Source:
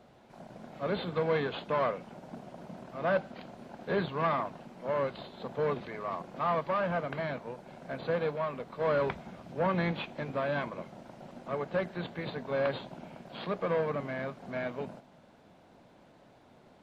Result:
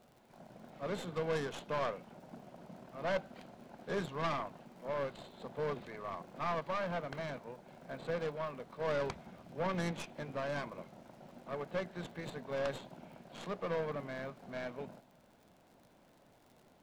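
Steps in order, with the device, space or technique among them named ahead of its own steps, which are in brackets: record under a worn stylus (tracing distortion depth 0.18 ms; crackle 77/s -47 dBFS; pink noise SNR 37 dB); gain -6.5 dB

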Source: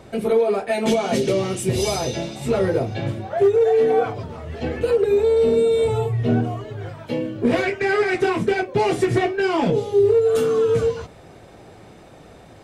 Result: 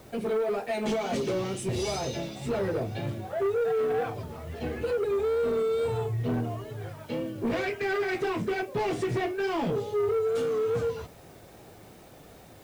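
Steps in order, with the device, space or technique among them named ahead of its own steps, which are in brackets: compact cassette (soft clip -17 dBFS, distortion -13 dB; LPF 8500 Hz; wow and flutter; white noise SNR 31 dB); gain -6 dB

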